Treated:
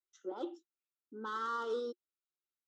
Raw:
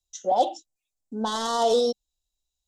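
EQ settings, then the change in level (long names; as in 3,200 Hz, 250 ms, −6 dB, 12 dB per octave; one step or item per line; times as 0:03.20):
pair of resonant band-passes 690 Hz, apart 1.9 octaves
low-shelf EQ 460 Hz −5.5 dB
+3.0 dB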